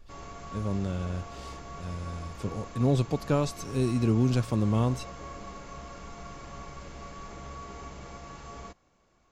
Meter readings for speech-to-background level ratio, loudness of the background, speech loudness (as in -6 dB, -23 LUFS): 14.0 dB, -43.5 LUFS, -29.5 LUFS